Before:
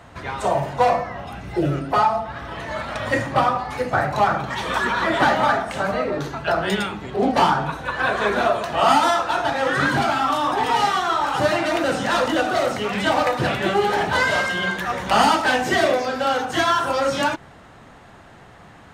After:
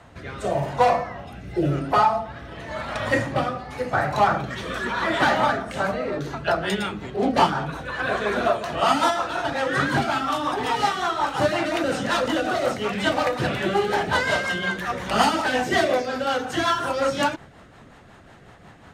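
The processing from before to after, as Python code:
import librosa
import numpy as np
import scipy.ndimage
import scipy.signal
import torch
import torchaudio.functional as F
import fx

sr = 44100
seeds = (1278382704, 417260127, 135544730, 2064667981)

y = fx.rotary_switch(x, sr, hz=0.9, then_hz=5.5, switch_at_s=5.38)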